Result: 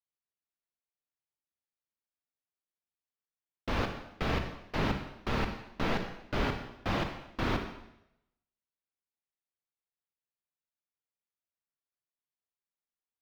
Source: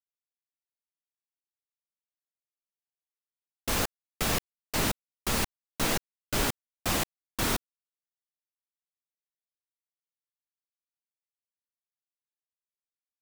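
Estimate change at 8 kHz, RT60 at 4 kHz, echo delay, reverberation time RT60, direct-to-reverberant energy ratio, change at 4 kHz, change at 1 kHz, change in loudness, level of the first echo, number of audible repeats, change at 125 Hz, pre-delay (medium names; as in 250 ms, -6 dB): -22.5 dB, 0.80 s, no echo, 0.85 s, 5.0 dB, -7.5 dB, -1.0 dB, -4.0 dB, no echo, no echo, +1.0 dB, 30 ms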